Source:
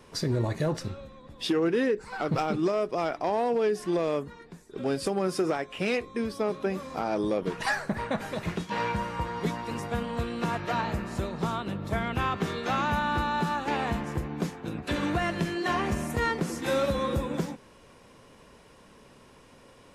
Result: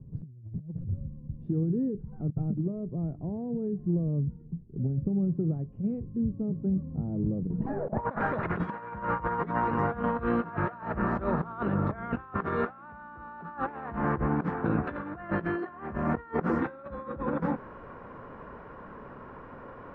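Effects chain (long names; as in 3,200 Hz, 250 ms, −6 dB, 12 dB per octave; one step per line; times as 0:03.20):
low-pass filter sweep 140 Hz → 1,400 Hz, 0:07.48–0:08.15
compressor whose output falls as the input rises −33 dBFS, ratio −0.5
high-shelf EQ 2,500 Hz −10.5 dB
level +3.5 dB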